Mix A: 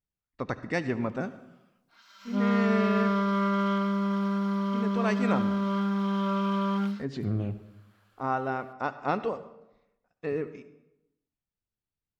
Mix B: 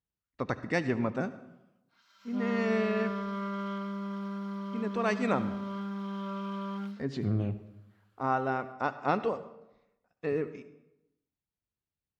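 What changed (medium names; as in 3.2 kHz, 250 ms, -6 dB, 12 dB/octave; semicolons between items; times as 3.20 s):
background -9.0 dB; master: add high-pass 41 Hz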